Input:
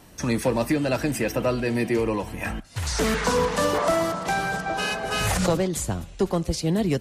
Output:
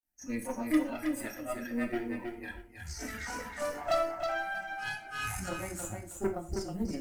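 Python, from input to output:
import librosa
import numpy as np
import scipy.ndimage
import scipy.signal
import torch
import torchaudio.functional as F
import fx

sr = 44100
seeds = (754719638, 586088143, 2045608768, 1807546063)

p1 = fx.bin_expand(x, sr, power=2.0)
p2 = fx.lowpass(p1, sr, hz=4800.0, slope=12, at=(3.86, 4.39))
p3 = fx.level_steps(p2, sr, step_db=23)
p4 = p2 + (p3 * librosa.db_to_amplitude(-3.0))
p5 = fx.chorus_voices(p4, sr, voices=2, hz=0.41, base_ms=27, depth_ms=2.2, mix_pct=65)
p6 = fx.quant_companded(p5, sr, bits=8)
p7 = fx.fixed_phaser(p6, sr, hz=710.0, stages=8)
p8 = fx.cheby_harmonics(p7, sr, harmonics=(6, 8), levels_db=(-21, -16), full_scale_db=-12.0)
p9 = p8 + fx.echo_feedback(p8, sr, ms=319, feedback_pct=20, wet_db=-5.5, dry=0)
p10 = fx.rev_gated(p9, sr, seeds[0], gate_ms=150, shape='falling', drr_db=4.5)
y = p10 * librosa.db_to_amplitude(-5.0)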